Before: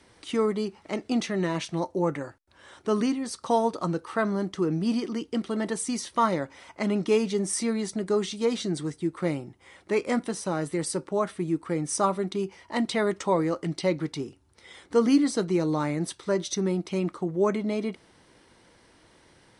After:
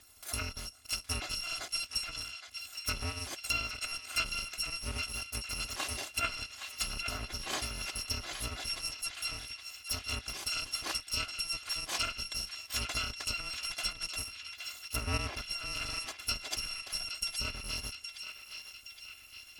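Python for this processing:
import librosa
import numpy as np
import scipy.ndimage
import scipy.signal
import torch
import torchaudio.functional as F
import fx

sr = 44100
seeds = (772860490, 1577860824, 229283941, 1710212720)

y = fx.bit_reversed(x, sr, seeds[0], block=256)
y = fx.env_lowpass_down(y, sr, base_hz=2400.0, full_db=-20.0)
y = fx.echo_banded(y, sr, ms=817, feedback_pct=65, hz=2800.0, wet_db=-6.0)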